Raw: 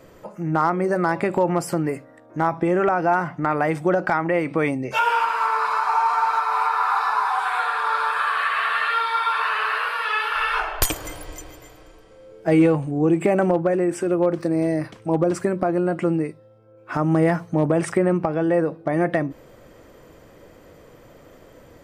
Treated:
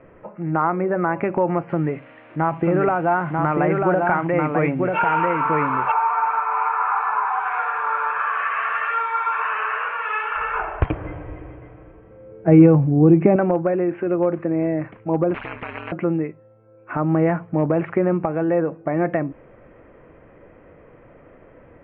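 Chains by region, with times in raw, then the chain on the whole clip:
0:01.69–0:05.92: spike at every zero crossing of −25 dBFS + parametric band 150 Hz +4.5 dB 0.31 octaves + single-tap delay 941 ms −3 dB
0:10.37–0:13.36: high-pass filter 99 Hz + RIAA equalisation playback
0:15.34–0:15.92: high-shelf EQ 2,700 Hz +7.5 dB + ring modulation 69 Hz + every bin compressed towards the loudest bin 10 to 1
whole clip: Butterworth low-pass 2,600 Hz 48 dB per octave; dynamic equaliser 1,900 Hz, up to −4 dB, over −41 dBFS, Q 5.1

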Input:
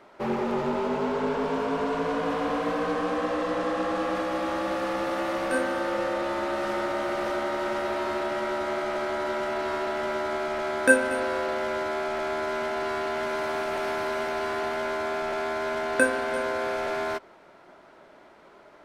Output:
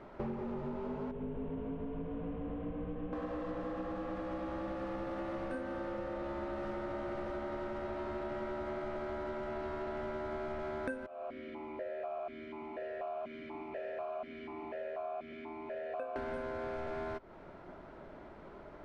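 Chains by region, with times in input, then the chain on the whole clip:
0:01.11–0:03.13: variable-slope delta modulation 16 kbit/s + parametric band 1,400 Hz −13 dB 2.8 octaves
0:11.06–0:16.16: comb filter 1.7 ms, depth 41% + formant filter that steps through the vowels 4.1 Hz
whole clip: RIAA equalisation playback; downward compressor 10 to 1, threshold −35 dBFS; level −1.5 dB

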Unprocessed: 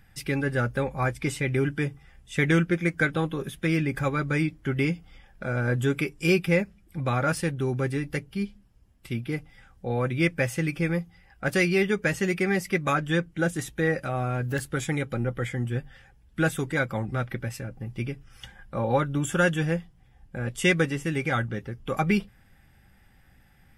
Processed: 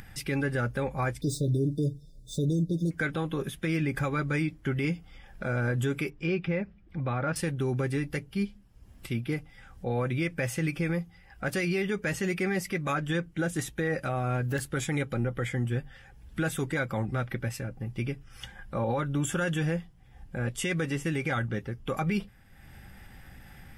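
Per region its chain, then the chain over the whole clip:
0:01.21–0:02.91: running median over 3 samples + linear-phase brick-wall band-stop 690–3,500 Hz + comb filter 6.8 ms, depth 79%
0:06.10–0:07.36: downward compressor 1.5 to 1, threshold −30 dBFS + high-frequency loss of the air 250 metres
whole clip: upward compression, threshold −38 dBFS; brickwall limiter −20 dBFS

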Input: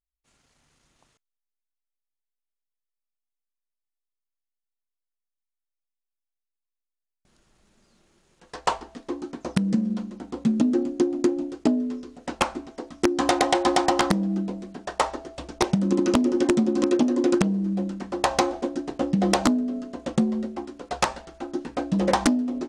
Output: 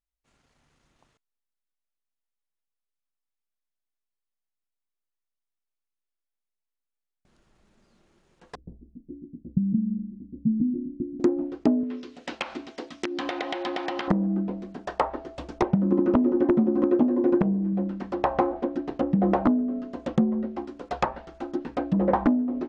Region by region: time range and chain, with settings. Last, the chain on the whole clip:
0:08.55–0:11.20: gap after every zero crossing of 0.23 ms + inverse Chebyshev low-pass filter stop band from 1,100 Hz, stop band 70 dB
0:11.83–0:14.08: meter weighting curve D + downward compressor 2.5 to 1, threshold −28 dBFS
0:17.08–0:17.73: notch filter 1,300 Hz, Q 8.6 + hum removal 47.65 Hz, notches 16
whole clip: treble cut that deepens with the level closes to 1,300 Hz, closed at −21 dBFS; high-shelf EQ 4,200 Hz −10 dB

